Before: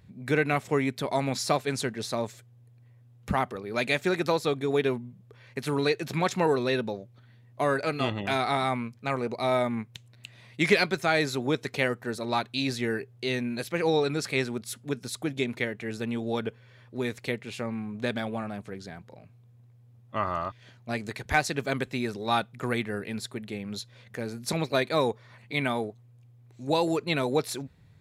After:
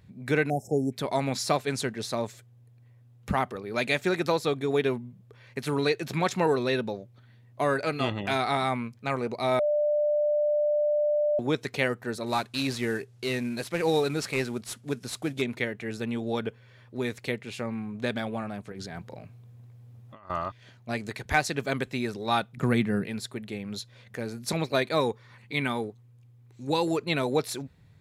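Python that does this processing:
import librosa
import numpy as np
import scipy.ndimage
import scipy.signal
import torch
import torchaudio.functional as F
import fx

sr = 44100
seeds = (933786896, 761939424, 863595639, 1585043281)

y = fx.spec_erase(x, sr, start_s=0.49, length_s=0.43, low_hz=850.0, high_hz=5100.0)
y = fx.cvsd(y, sr, bps=64000, at=(12.26, 15.42))
y = fx.over_compress(y, sr, threshold_db=-43.0, ratio=-1.0, at=(18.72, 20.3))
y = fx.peak_eq(y, sr, hz=170.0, db=12.5, octaves=1.2, at=(22.57, 23.07))
y = fx.peak_eq(y, sr, hz=650.0, db=-12.0, octaves=0.21, at=(25.0, 26.91))
y = fx.edit(y, sr, fx.bleep(start_s=9.59, length_s=1.8, hz=594.0, db=-21.5), tone=tone)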